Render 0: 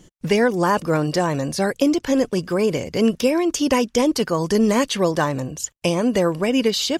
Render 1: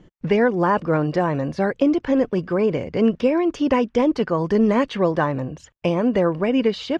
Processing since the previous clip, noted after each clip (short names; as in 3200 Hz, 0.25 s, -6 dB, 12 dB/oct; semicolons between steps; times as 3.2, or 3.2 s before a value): LPF 2200 Hz 12 dB/oct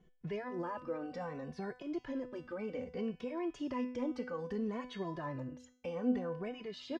limiter -14.5 dBFS, peak gain reduction 7.5 dB; resonator 250 Hz, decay 0.52 s, harmonics all, mix 80%; endless flanger 2.3 ms -0.63 Hz; gain -2 dB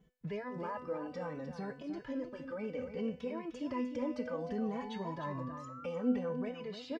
notch comb 360 Hz; painted sound rise, 3.95–5.86, 540–1400 Hz -51 dBFS; echo 0.304 s -9.5 dB; gain +1 dB